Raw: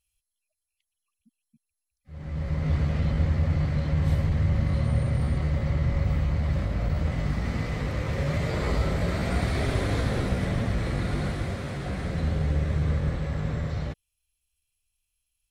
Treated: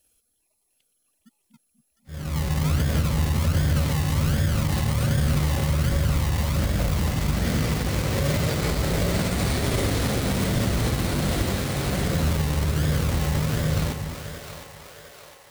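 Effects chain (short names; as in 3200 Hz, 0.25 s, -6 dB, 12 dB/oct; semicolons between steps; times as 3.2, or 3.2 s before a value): bell 1600 Hz -7.5 dB 1.9 oct; in parallel at -3 dB: decimation with a swept rate 37×, swing 60% 1.3 Hz; on the sum: tilt +2 dB/oct; on a send: split-band echo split 450 Hz, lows 0.243 s, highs 0.706 s, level -9 dB; on the sum: limiter -19.5 dBFS, peak gain reduction 9.5 dB; gain +7.5 dB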